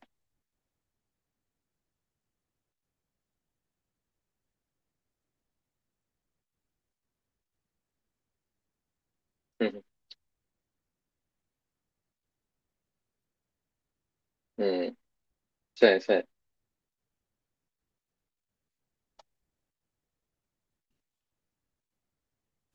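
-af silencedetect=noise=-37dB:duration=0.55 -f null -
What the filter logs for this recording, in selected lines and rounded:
silence_start: 0.00
silence_end: 9.61 | silence_duration: 9.61
silence_start: 10.12
silence_end: 14.59 | silence_duration: 4.47
silence_start: 14.90
silence_end: 15.78 | silence_duration: 0.89
silence_start: 16.21
silence_end: 22.74 | silence_duration: 6.53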